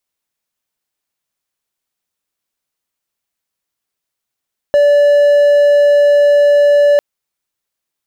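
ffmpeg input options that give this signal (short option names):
-f lavfi -i "aevalsrc='0.631*(1-4*abs(mod(579*t+0.25,1)-0.5))':d=2.25:s=44100"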